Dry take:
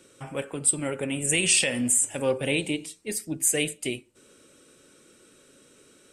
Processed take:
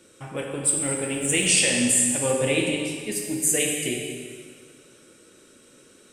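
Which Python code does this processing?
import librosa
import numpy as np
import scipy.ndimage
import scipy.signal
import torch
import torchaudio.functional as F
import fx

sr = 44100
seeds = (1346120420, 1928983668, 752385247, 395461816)

y = fx.law_mismatch(x, sr, coded='A', at=(0.62, 1.46))
y = fx.rev_plate(y, sr, seeds[0], rt60_s=2.0, hf_ratio=0.9, predelay_ms=0, drr_db=-0.5)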